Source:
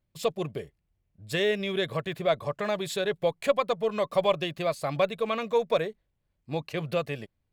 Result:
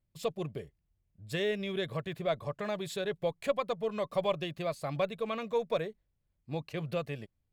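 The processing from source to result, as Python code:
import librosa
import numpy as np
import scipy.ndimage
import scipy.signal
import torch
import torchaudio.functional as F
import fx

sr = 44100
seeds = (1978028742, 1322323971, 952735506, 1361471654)

y = fx.low_shelf(x, sr, hz=220.0, db=6.0)
y = F.gain(torch.from_numpy(y), -7.0).numpy()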